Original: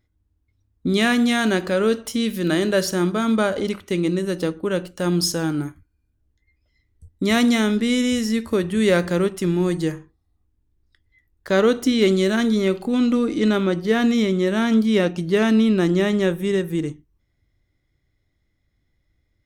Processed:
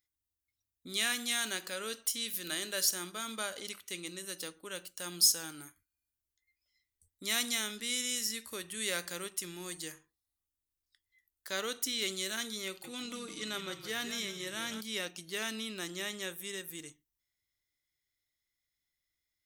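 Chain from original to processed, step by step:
first-order pre-emphasis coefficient 0.97
0:12.67–0:14.81: echo with shifted repeats 166 ms, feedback 37%, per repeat −40 Hz, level −10 dB

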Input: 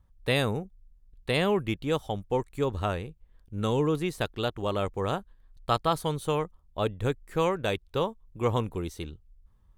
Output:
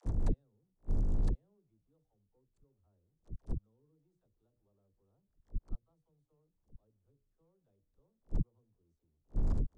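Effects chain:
converter with a step at zero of −29.5 dBFS
low-pass filter 7,800 Hz 24 dB per octave
parametric band 2,600 Hz −14 dB 1.7 octaves
mains-hum notches 60/120/180/240/300/360/420/480/540/600 Hz
gate with flip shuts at −31 dBFS, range −36 dB
tilt shelving filter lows +6.5 dB, about 640 Hz
all-pass dispersion lows, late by 62 ms, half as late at 360 Hz
expander for the loud parts 2.5 to 1, over −39 dBFS
level +3.5 dB

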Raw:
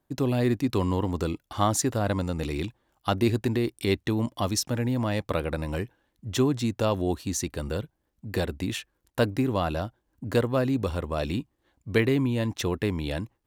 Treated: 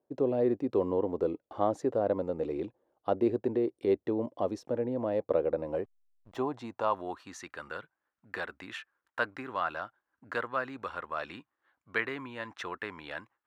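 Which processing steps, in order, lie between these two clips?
band-pass filter sweep 490 Hz → 1,400 Hz, 0:05.59–0:07.45
0:05.84–0:06.37: slack as between gear wheels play −47.5 dBFS
level +4 dB

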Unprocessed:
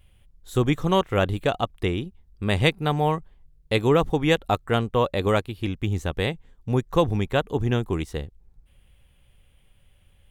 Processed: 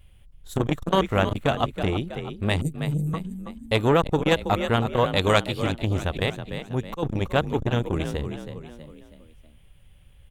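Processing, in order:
0:02.61–0:03.14: elliptic band-stop filter 150–7,300 Hz, stop band 40 dB
0:05.16–0:05.63: parametric band 5,300 Hz +10.5 dB 2.5 octaves
0:06.30–0:07.03: volume swells 187 ms
low-shelf EQ 94 Hz +3.5 dB
echo with shifted repeats 323 ms, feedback 42%, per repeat +39 Hz, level −10 dB
saturating transformer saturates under 770 Hz
level +1.5 dB

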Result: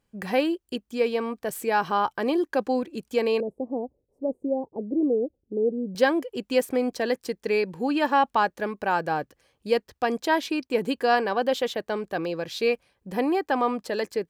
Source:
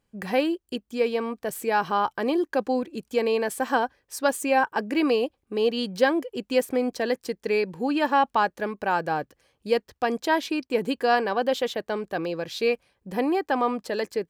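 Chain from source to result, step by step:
0:03.40–0:05.95: inverse Chebyshev low-pass filter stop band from 1,400 Hz, stop band 50 dB

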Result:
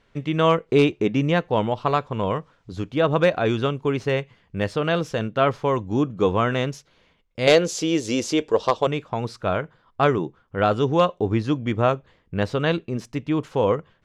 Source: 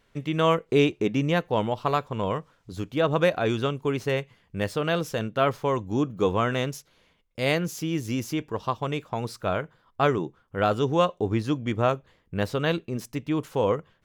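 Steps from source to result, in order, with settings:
0:07.47–0:08.87: octave-band graphic EQ 125/500/4,000/8,000 Hz −9/+11/+8/+11 dB
wave folding −9.5 dBFS
high-frequency loss of the air 71 metres
level +3.5 dB

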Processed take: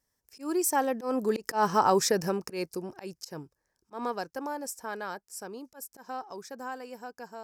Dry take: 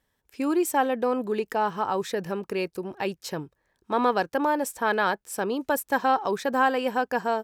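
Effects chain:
source passing by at 0:01.80, 7 m/s, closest 3.2 metres
high shelf with overshoot 4,300 Hz +6.5 dB, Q 3
volume swells 133 ms
level +4.5 dB

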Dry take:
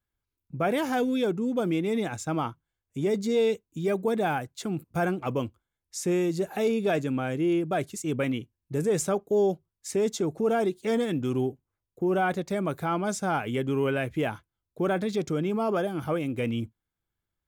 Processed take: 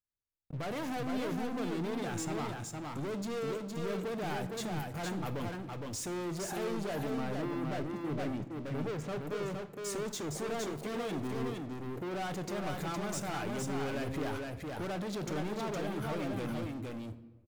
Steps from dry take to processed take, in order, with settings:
0:06.91–0:09.27: low-pass filter 1,600 Hz 12 dB per octave
leveller curve on the samples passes 5
brickwall limiter −29 dBFS, peak gain reduction 13.5 dB
single-tap delay 463 ms −3.5 dB
convolution reverb RT60 1.1 s, pre-delay 7 ms, DRR 10.5 dB
level −6.5 dB

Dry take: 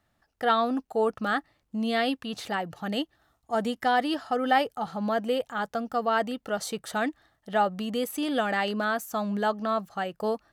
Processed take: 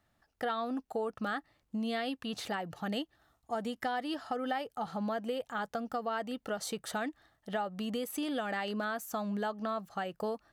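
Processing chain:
downward compressor 5 to 1, threshold −30 dBFS, peak gain reduction 12 dB
level −2 dB

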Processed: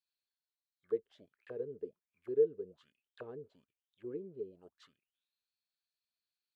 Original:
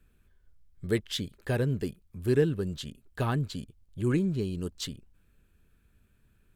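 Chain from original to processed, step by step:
envelope filter 450–4,600 Hz, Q 10, down, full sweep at −27 dBFS
dynamic equaliser 710 Hz, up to −5 dB, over −50 dBFS, Q 2.1

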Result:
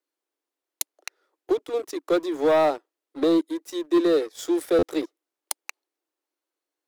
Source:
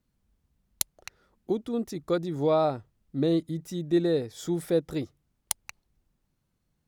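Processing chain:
Butterworth high-pass 290 Hz 96 dB per octave
leveller curve on the samples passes 2
soft clipping −13 dBFS, distortion −17 dB
buffer that repeats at 0:04.78, samples 512, times 3

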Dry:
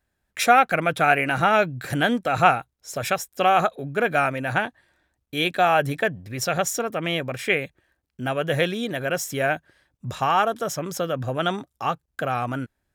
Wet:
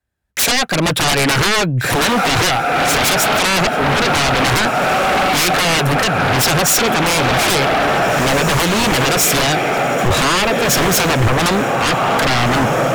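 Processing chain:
stylus tracing distortion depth 0.035 ms
shaped tremolo triangle 0.92 Hz, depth 45%
on a send: feedback delay with all-pass diffusion 1,908 ms, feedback 55%, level −11.5 dB
on the sum: downward compressor 4 to 1, threshold −28 dBFS, peak gain reduction 14.5 dB
high-pass filter 47 Hz
sine wavefolder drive 18 dB, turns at −15 dBFS
multiband upward and downward expander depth 70%
level +4 dB

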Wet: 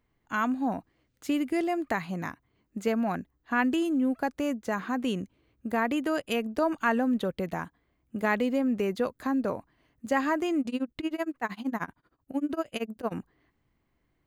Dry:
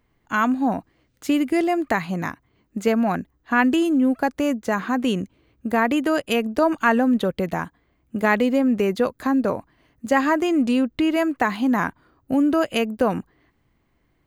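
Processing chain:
0:10.60–0:13.12: amplitude tremolo 13 Hz, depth 96%
level −7.5 dB

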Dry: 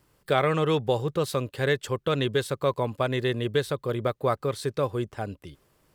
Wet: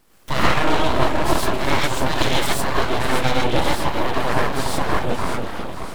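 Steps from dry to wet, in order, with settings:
0:01.97–0:02.47: high-shelf EQ 6,000 Hz +9.5 dB
in parallel at +1 dB: downward compressor, threshold −33 dBFS, peak gain reduction 14.5 dB
on the sum: delay that swaps between a low-pass and a high-pass 291 ms, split 830 Hz, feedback 70%, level −6 dB
reverb whose tail is shaped and stops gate 160 ms rising, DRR −5.5 dB
full-wave rectification

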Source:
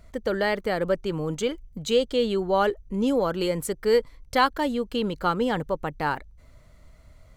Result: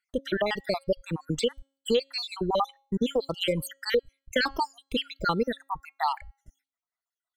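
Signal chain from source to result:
time-frequency cells dropped at random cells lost 70%
noise gate with hold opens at −49 dBFS
hum removal 272.7 Hz, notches 33
dynamic equaliser 4,300 Hz, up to +7 dB, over −50 dBFS, Q 0.96
downward compressor 3 to 1, threshold −26 dBFS, peak gain reduction 8 dB
reverb reduction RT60 1.5 s
level +4 dB

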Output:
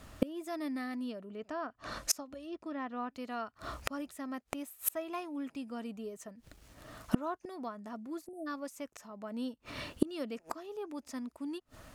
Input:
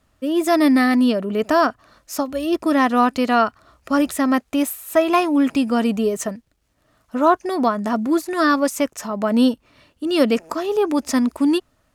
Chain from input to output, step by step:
0:01.29–0:03.15: treble cut that deepens with the level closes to 2,800 Hz, closed at −12.5 dBFS
0:08.26–0:08.47: time-frequency box erased 820–7,700 Hz
gate with flip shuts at −23 dBFS, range −33 dB
level +10.5 dB

